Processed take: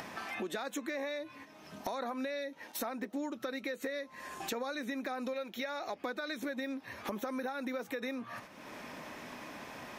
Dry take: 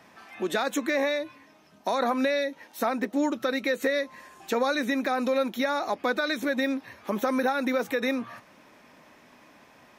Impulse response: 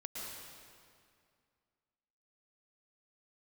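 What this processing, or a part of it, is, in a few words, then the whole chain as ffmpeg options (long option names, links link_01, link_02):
upward and downward compression: -filter_complex "[0:a]agate=range=-8dB:threshold=-51dB:ratio=16:detection=peak,asettb=1/sr,asplit=3[link_01][link_02][link_03];[link_01]atrim=end=5.334[link_04];[link_02]atrim=start=5.33:end=5.97,asetpts=PTS-STARTPTS,afade=type=in:duration=0.004:curve=qsin,afade=type=out:start_time=0.636:duration=0.004:curve=qsin,equalizer=frequency=250:width_type=o:width=0.67:gain=-7,equalizer=frequency=1000:width_type=o:width=0.67:gain=-5,equalizer=frequency=2500:width_type=o:width=0.67:gain=3,equalizer=frequency=10000:width_type=o:width=0.67:gain=-6[link_05];[link_03]atrim=start=5.966[link_06];[link_04][link_05]acrossfade=duration=0.004:curve1=hsin:curve2=qsin[link_07];[link_07][link_06]acrossfade=duration=0.004:curve1=qsin:curve2=hsin,acompressor=mode=upward:threshold=-29dB:ratio=2.5,acompressor=threshold=-35dB:ratio=4,volume=-1.5dB"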